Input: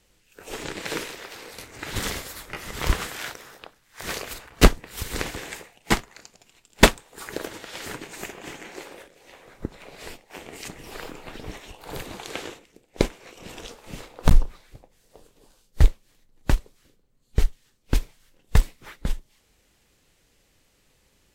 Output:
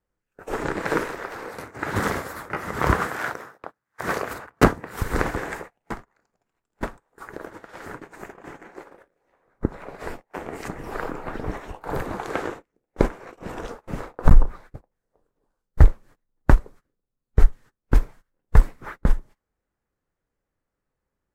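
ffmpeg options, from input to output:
-filter_complex "[0:a]asettb=1/sr,asplit=3[a][b][c];[a]atrim=end=1.484[d];[b]atrim=start=1.48:end=5.02,asetpts=PTS-STARTPTS,afade=t=in:d=0.004:c=qsin,afade=t=out:st=3.536:d=0.004:c=qsin,highpass=90[e];[c]atrim=start=5.016[f];[d][e]acrossfade=d=0.004:c1=hsin:c2=qsin[g];[g][f]acrossfade=d=0.004:c1=qsin:c2=hsin,asettb=1/sr,asplit=3[h][i][j];[h]atrim=end=5.764[k];[i]atrim=start=5.76:end=9.54,asetpts=PTS-STARTPTS,afade=t=in:d=0.004:c=qsin,afade=t=out:st=3.776:d=0.004:c=qsin,acompressor=threshold=-43dB:ratio=2.5:attack=3.2:release=140:knee=1:detection=peak[l];[j]atrim=start=9.536[m];[k][l]acrossfade=d=0.004:c1=hsin:c2=qsin[n];[n][m]acrossfade=d=0.004:c1=qsin:c2=hsin,agate=range=-24dB:threshold=-44dB:ratio=16:detection=peak,highshelf=f=2.1k:t=q:w=1.5:g=-12.5,alimiter=level_in=8.5dB:limit=-1dB:release=50:level=0:latency=1,volume=-1dB"

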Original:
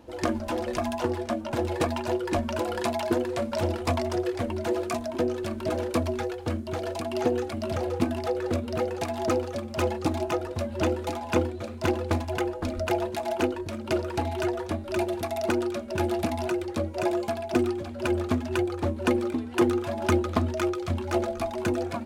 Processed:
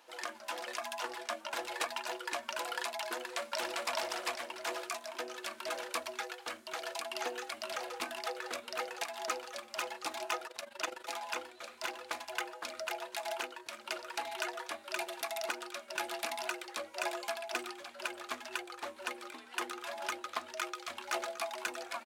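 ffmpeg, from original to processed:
-filter_complex "[0:a]asplit=2[a][b];[b]afade=t=in:st=3.19:d=0.01,afade=t=out:st=3.95:d=0.01,aecho=0:1:400|800|1200|1600|2000:1|0.35|0.1225|0.042875|0.0150062[c];[a][c]amix=inputs=2:normalize=0,asettb=1/sr,asplit=3[d][e][f];[d]atrim=end=10.474[g];[e]atrim=start=10.47:end=11.09,asetpts=PTS-STARTPTS,afade=t=in:d=0.004:c=qsin,afade=t=out:st=0.616:d=0.004:c=qsin,tremolo=f=24:d=0.824[h];[f]atrim=start=11.086[i];[g][h]acrossfade=d=0.004:c1=hsin:c2=qsin[j];[j][i]acrossfade=d=0.004:c1=qsin:c2=hsin,highpass=1.2k,alimiter=limit=-21.5dB:level=0:latency=1:release=484,volume=1dB"

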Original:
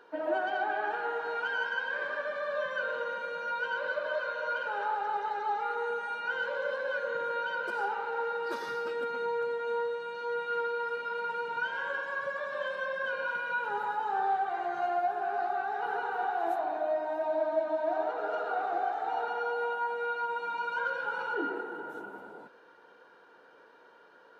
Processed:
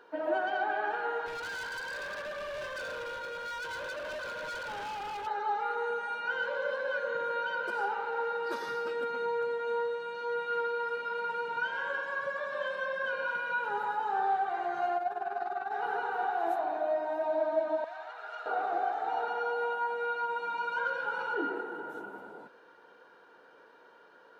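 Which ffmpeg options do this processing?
-filter_complex "[0:a]asettb=1/sr,asplit=3[a][b][c];[a]atrim=end=1.264[d];[b]atrim=start=1.26:end=5.27,asetpts=PTS-STARTPTS,afade=t=in:d=0.004:c=qsin,afade=t=out:st=4.006:d=0.004:c=qsin,asoftclip=type=hard:threshold=-36.5dB[e];[c]atrim=start=5.266[f];[d][e]acrossfade=d=0.004:c1=hsin:c2=qsin[g];[g][f]acrossfade=d=0.004:c1=qsin:c2=hsin,asettb=1/sr,asplit=3[h][i][j];[h]atrim=end=14.974[k];[i]atrim=start=14.97:end=15.71,asetpts=PTS-STARTPTS,afade=t=in:d=0.004:c=qsin,afade=t=out:st=0.736:d=0.004:c=qsin,tremolo=f=20:d=0.71[l];[j]atrim=start=15.706[m];[k][l]acrossfade=d=0.004:c1=hsin:c2=qsin[n];[n][m]acrossfade=d=0.004:c1=qsin:c2=hsin,asettb=1/sr,asplit=3[o][p][q];[o]atrim=end=17.844[r];[p]atrim=start=17.84:end=18.46,asetpts=PTS-STARTPTS,afade=t=in:d=0.004:c=qsin,afade=t=out:st=0.616:d=0.004:c=qsin,highpass=1.5k[s];[q]atrim=start=18.456[t];[r][s]acrossfade=d=0.004:c1=hsin:c2=qsin[u];[u][t]acrossfade=d=0.004:c1=qsin:c2=hsin"

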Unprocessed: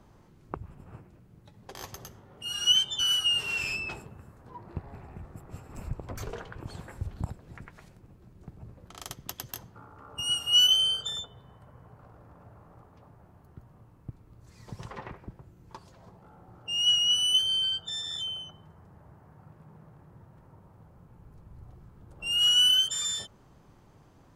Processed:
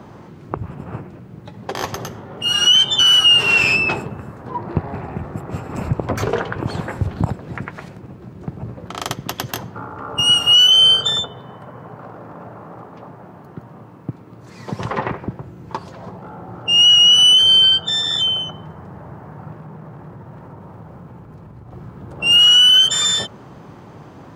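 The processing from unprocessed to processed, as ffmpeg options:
-filter_complex "[0:a]asettb=1/sr,asplit=3[a][b][c];[a]atrim=end=11.314[d];[b]atrim=start=11.31:end=14.81,asetpts=PTS-STARTPTS,afade=t=in:d=0.004:c=qsin,afade=t=out:st=3.496:d=0.004:c=qsin,highpass=140[e];[c]atrim=start=14.806[f];[d][e]acrossfade=d=0.004:c1=hsin:c2=qsin[g];[g][f]acrossfade=d=0.004:c1=qsin:c2=hsin,asettb=1/sr,asplit=3[h][i][j];[h]atrim=end=19.554[k];[i]atrim=start=19.55:end=21.72,asetpts=PTS-STARTPTS,afade=t=in:d=0.004:c=qsin,afade=t=out:st=2.166:d=0.004:c=qsin,acompressor=threshold=-50dB:ratio=6:attack=3.2:release=140:knee=1:detection=peak[l];[j]atrim=start=21.716[m];[k][l]acrossfade=d=0.004:c1=hsin:c2=qsin[n];[n][m]acrossfade=d=0.004:c1=qsin:c2=hsin,highpass=120,equalizer=f=12k:t=o:w=2:g=-12.5,alimiter=level_in=24.5dB:limit=-1dB:release=50:level=0:latency=1,volume=-4.5dB"

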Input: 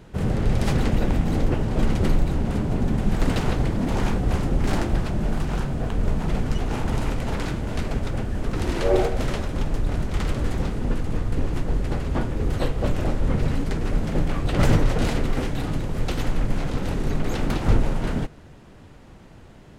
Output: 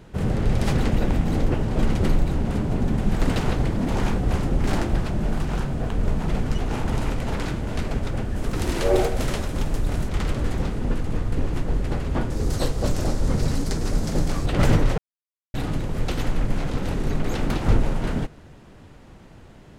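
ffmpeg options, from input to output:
-filter_complex "[0:a]asettb=1/sr,asplit=3[a][b][c];[a]atrim=end=8.364[d];[b]atrim=start=8.36:end=10.09,asetpts=PTS-STARTPTS,afade=t=in:d=0.004:c=qsin,afade=t=out:st=1.726:d=0.004:c=qsin,highshelf=f=6.4k:g=9.5[e];[c]atrim=start=10.086[f];[d][e]acrossfade=d=0.004:c1=hsin:c2=qsin[g];[g][f]acrossfade=d=0.004:c1=qsin:c2=hsin,asettb=1/sr,asplit=3[h][i][j];[h]atrim=end=12.304[k];[i]atrim=start=12.3:end=14.46,asetpts=PTS-STARTPTS,afade=t=in:d=0.004:c=qsin,afade=t=out:st=2.156:d=0.004:c=qsin,highshelf=f=3.8k:t=q:w=1.5:g=8.5[l];[j]atrim=start=14.456[m];[k][l]acrossfade=d=0.004:c1=hsin:c2=qsin[n];[n][m]acrossfade=d=0.004:c1=qsin:c2=hsin,asplit=3[o][p][q];[o]atrim=end=14.98,asetpts=PTS-STARTPTS,afade=t=out:st=14.976:d=0.004:c=hsin[r];[p]atrim=start=14.98:end=15.54,asetpts=PTS-STARTPTS,volume=0[s];[q]atrim=start=15.54,asetpts=PTS-STARTPTS,afade=t=in:d=0.004:c=hsin[t];[r][s][t]concat=n=3:v=0:a=1"

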